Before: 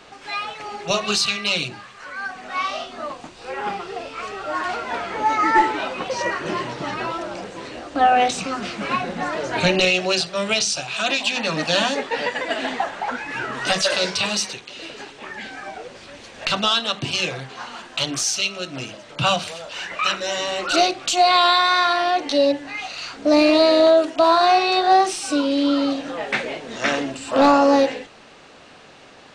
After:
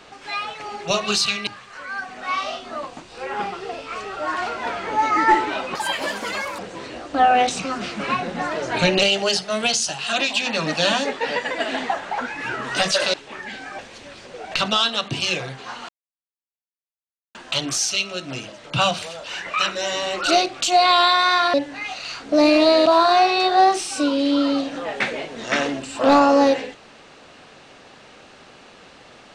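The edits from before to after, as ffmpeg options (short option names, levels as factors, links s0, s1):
-filter_complex "[0:a]asplit=12[s0][s1][s2][s3][s4][s5][s6][s7][s8][s9][s10][s11];[s0]atrim=end=1.472[s12];[s1]atrim=start=1.738:end=6.024[s13];[s2]atrim=start=6.02:end=7.4,asetpts=PTS-STARTPTS,asetrate=72765,aresample=44100[s14];[s3]atrim=start=7.396:end=9.834[s15];[s4]atrim=start=9.83:end=11.03,asetpts=PTS-STARTPTS,asetrate=47628,aresample=44100[s16];[s5]atrim=start=11.026:end=14.042[s17];[s6]atrim=start=15.048:end=15.702[s18];[s7]atrim=start=15.698:end=16.432,asetpts=PTS-STARTPTS,areverse[s19];[s8]atrim=start=16.428:end=17.8,asetpts=PTS-STARTPTS,afade=t=out:st=1.368:d=0.004:c=hsin,apad=pad_dur=1.46[s20];[s9]atrim=start=17.8:end=21.992,asetpts=PTS-STARTPTS,afade=t=in:d=0.004:c=hsin[s21];[s10]atrim=start=22.468:end=23.792[s22];[s11]atrim=start=24.178[s23];[s12][s13]acrossfade=d=0.004:c1=hsin:c2=hsin[s24];[s24][s14]acrossfade=d=0.004:c1=hsin:c2=hsin[s25];[s25][s15]acrossfade=d=0.004:c1=hsin:c2=hsin[s26];[s26][s16]acrossfade=d=0.004:c1=hsin:c2=hsin[s27];[s27][s17]acrossfade=d=0.004:c1=hsin:c2=hsin[s28];[s28][s18]acrossfade=d=0.004:c1=hsin:c2=hsin[s29];[s29][s19]acrossfade=d=0.004:c1=hsin:c2=hsin[s30];[s20][s21]concat=n=2:v=0:a=1[s31];[s30][s31]acrossfade=d=0.004:c1=hsin:c2=hsin[s32];[s32][s22]acrossfade=d=0.004:c1=hsin:c2=hsin[s33];[s33][s23]acrossfade=d=0.004:c1=hsin:c2=hsin"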